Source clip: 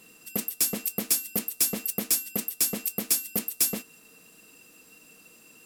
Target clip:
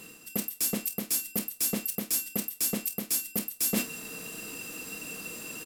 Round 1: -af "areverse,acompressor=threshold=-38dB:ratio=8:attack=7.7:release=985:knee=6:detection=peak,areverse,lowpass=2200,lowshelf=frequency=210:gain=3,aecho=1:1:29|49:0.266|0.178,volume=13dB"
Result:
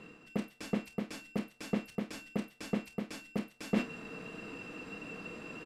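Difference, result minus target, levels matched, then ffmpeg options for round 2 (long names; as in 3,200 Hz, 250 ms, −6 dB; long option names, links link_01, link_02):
2,000 Hz band +5.0 dB
-af "areverse,acompressor=threshold=-38dB:ratio=8:attack=7.7:release=985:knee=6:detection=peak,areverse,lowshelf=frequency=210:gain=3,aecho=1:1:29|49:0.266|0.178,volume=13dB"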